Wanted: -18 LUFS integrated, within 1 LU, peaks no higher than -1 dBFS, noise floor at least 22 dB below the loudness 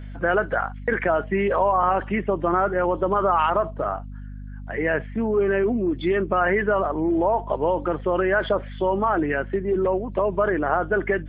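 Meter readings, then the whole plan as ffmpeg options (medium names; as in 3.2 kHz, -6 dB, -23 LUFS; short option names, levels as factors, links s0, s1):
hum 50 Hz; highest harmonic 250 Hz; hum level -33 dBFS; loudness -22.5 LUFS; peak level -7.0 dBFS; loudness target -18.0 LUFS
-> -af "bandreject=f=50:t=h:w=6,bandreject=f=100:t=h:w=6,bandreject=f=150:t=h:w=6,bandreject=f=200:t=h:w=6,bandreject=f=250:t=h:w=6"
-af "volume=1.68"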